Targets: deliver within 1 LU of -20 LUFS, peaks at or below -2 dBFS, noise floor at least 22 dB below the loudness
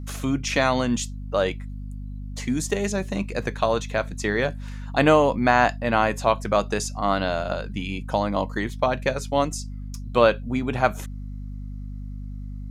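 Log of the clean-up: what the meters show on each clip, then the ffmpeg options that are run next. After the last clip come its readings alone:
hum 50 Hz; harmonics up to 250 Hz; hum level -31 dBFS; loudness -23.5 LUFS; peak -3.5 dBFS; loudness target -20.0 LUFS
-> -af "bandreject=f=50:t=h:w=6,bandreject=f=100:t=h:w=6,bandreject=f=150:t=h:w=6,bandreject=f=200:t=h:w=6,bandreject=f=250:t=h:w=6"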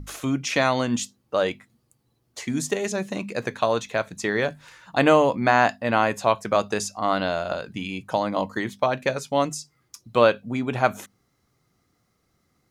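hum none; loudness -24.0 LUFS; peak -3.5 dBFS; loudness target -20.0 LUFS
-> -af "volume=4dB,alimiter=limit=-2dB:level=0:latency=1"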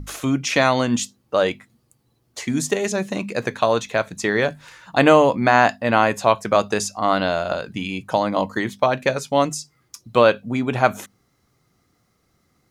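loudness -20.0 LUFS; peak -2.0 dBFS; noise floor -66 dBFS

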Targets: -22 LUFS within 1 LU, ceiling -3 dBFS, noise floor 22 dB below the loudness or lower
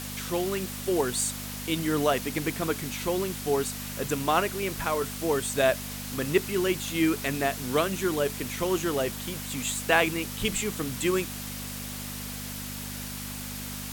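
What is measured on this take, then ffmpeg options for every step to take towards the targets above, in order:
hum 50 Hz; harmonics up to 250 Hz; hum level -37 dBFS; noise floor -37 dBFS; noise floor target -51 dBFS; loudness -28.5 LUFS; peak -6.0 dBFS; loudness target -22.0 LUFS
-> -af "bandreject=f=50:t=h:w=4,bandreject=f=100:t=h:w=4,bandreject=f=150:t=h:w=4,bandreject=f=200:t=h:w=4,bandreject=f=250:t=h:w=4"
-af "afftdn=nr=14:nf=-37"
-af "volume=6.5dB,alimiter=limit=-3dB:level=0:latency=1"

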